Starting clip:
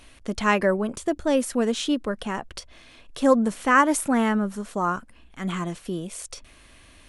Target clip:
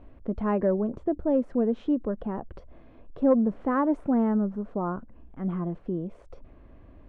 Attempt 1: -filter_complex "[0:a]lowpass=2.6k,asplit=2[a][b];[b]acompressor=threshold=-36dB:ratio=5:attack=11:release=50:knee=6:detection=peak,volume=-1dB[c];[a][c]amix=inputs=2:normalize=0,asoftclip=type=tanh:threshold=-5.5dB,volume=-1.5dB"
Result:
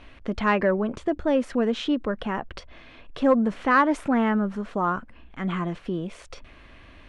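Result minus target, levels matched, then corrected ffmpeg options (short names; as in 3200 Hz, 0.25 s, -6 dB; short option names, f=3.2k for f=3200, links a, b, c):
2000 Hz band +13.0 dB; compressor: peak gain reduction -5 dB
-filter_complex "[0:a]lowpass=650,asplit=2[a][b];[b]acompressor=threshold=-44.5dB:ratio=5:attack=11:release=50:knee=6:detection=peak,volume=-1dB[c];[a][c]amix=inputs=2:normalize=0,asoftclip=type=tanh:threshold=-5.5dB,volume=-1.5dB"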